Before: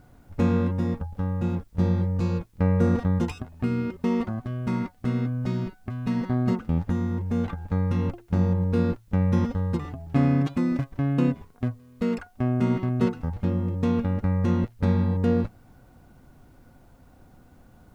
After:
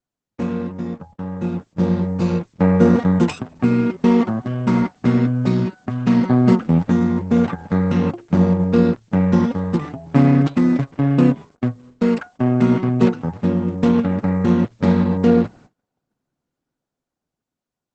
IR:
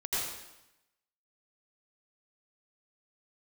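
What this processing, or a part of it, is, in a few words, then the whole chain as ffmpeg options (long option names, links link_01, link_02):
video call: -filter_complex "[0:a]asettb=1/sr,asplit=3[link_01][link_02][link_03];[link_01]atrim=end=7.364[link_04];[link_02]atrim=start=7.36:end=8.12,asetpts=PTS-STARTPTS,afade=type=in:duration=0.004:curve=qsin,afade=type=out:start_time=0.756:duration=0.004:curve=qsin,equalizer=frequency=330:width_type=o:width=0.22:gain=-4.5[link_05];[link_03]atrim=start=8.116[link_06];[link_04][link_05]acrossfade=duration=0.004:curve1=hsin:curve2=qsin[link_07];[link_07][link_06]acrossfade=duration=0.004:curve1=qsin:curve2=hsin,highpass=frequency=130:width=0.5412,highpass=frequency=130:width=1.3066,dynaudnorm=framelen=380:gausssize=9:maxgain=14dB,agate=range=-33dB:threshold=-41dB:ratio=16:detection=peak" -ar 48000 -c:a libopus -b:a 12k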